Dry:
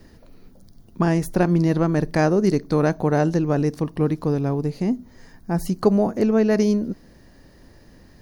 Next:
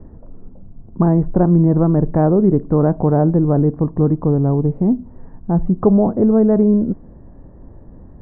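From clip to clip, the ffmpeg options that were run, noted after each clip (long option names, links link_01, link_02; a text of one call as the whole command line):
ffmpeg -i in.wav -filter_complex "[0:a]lowpass=frequency=1100:width=0.5412,lowpass=frequency=1100:width=1.3066,lowshelf=frequency=180:gain=7,asplit=2[link_01][link_02];[link_02]alimiter=limit=-14.5dB:level=0:latency=1:release=11,volume=-2dB[link_03];[link_01][link_03]amix=inputs=2:normalize=0" out.wav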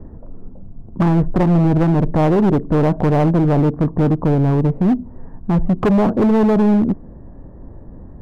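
ffmpeg -i in.wav -af "volume=14dB,asoftclip=hard,volume=-14dB,volume=3dB" out.wav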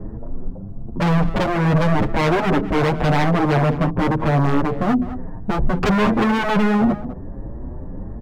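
ffmpeg -i in.wav -filter_complex "[0:a]aeval=exprs='0.299*sin(PI/2*1.78*val(0)/0.299)':channel_layout=same,asplit=2[link_01][link_02];[link_02]adelay=204.1,volume=-14dB,highshelf=frequency=4000:gain=-4.59[link_03];[link_01][link_03]amix=inputs=2:normalize=0,asplit=2[link_04][link_05];[link_05]adelay=7.2,afreqshift=1.5[link_06];[link_04][link_06]amix=inputs=2:normalize=1" out.wav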